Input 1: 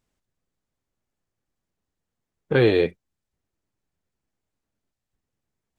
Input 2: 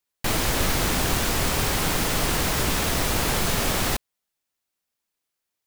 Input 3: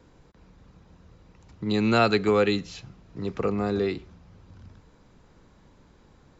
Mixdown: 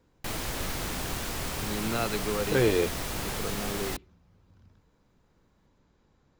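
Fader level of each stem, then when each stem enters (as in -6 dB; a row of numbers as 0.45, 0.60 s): -6.0, -10.0, -10.5 dB; 0.00, 0.00, 0.00 s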